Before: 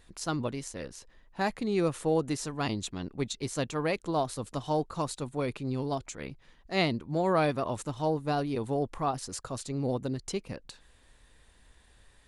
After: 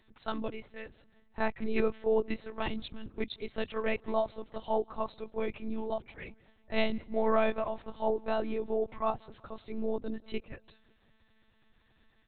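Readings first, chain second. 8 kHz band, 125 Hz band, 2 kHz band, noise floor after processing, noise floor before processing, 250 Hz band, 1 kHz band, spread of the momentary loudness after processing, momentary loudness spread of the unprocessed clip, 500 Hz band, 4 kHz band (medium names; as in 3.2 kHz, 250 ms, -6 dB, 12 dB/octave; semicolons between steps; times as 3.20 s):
under -40 dB, -14.0 dB, -1.5 dB, -68 dBFS, -61 dBFS, -4.5 dB, -3.0 dB, 16 LU, 11 LU, -0.5 dB, -5.5 dB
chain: feedback delay 180 ms, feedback 54%, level -22 dB; spectral noise reduction 7 dB; monotone LPC vocoder at 8 kHz 220 Hz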